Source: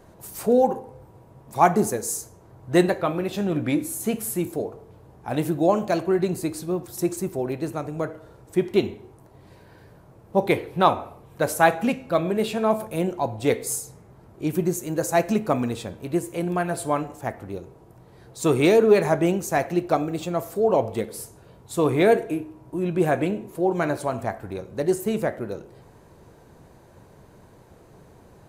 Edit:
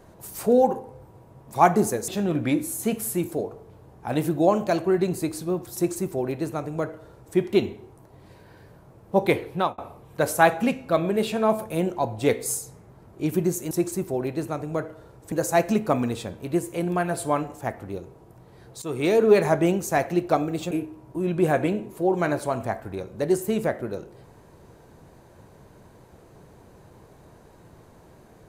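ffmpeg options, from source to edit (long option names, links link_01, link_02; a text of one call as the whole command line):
ffmpeg -i in.wav -filter_complex "[0:a]asplit=7[link_01][link_02][link_03][link_04][link_05][link_06][link_07];[link_01]atrim=end=2.082[link_08];[link_02]atrim=start=3.288:end=10.99,asetpts=PTS-STARTPTS,afade=type=out:start_time=7.412:duration=0.29[link_09];[link_03]atrim=start=10.99:end=14.922,asetpts=PTS-STARTPTS,afade=type=in:duration=0.004:curve=hsin[link_10];[link_04]atrim=start=6.958:end=8.572[link_11];[link_05]atrim=start=14.918:end=18.42,asetpts=PTS-STARTPTS,afade=type=out:start_time=3.498:duration=0.004:curve=hsin:silence=0.16788[link_12];[link_06]atrim=start=18.42:end=20.312,asetpts=PTS-STARTPTS,afade=type=in:duration=0.51:silence=0.16788[link_13];[link_07]atrim=start=22.288[link_14];[link_09][link_10]concat=n=2:v=0:a=1[link_15];[link_08][link_15]acrossfade=duration=0.004:curve1=hsin:curve2=hsin[link_16];[link_16][link_11]acrossfade=duration=0.004:curve1=hsin:curve2=hsin[link_17];[link_12][link_13]concat=n=2:v=0:a=1[link_18];[link_17][link_18]acrossfade=duration=0.004:curve1=hsin:curve2=hsin[link_19];[link_19][link_14]acrossfade=duration=0.004:curve1=hsin:curve2=hsin" out.wav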